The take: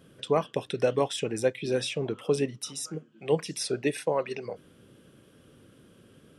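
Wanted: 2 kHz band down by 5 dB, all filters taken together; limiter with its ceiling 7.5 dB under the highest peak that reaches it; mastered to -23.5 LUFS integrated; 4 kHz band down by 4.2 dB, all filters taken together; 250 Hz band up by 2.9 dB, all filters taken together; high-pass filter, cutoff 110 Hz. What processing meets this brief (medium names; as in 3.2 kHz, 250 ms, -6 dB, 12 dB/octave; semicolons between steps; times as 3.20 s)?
high-pass 110 Hz; peaking EQ 250 Hz +4 dB; peaking EQ 2 kHz -5.5 dB; peaking EQ 4 kHz -4 dB; trim +8.5 dB; peak limiter -10.5 dBFS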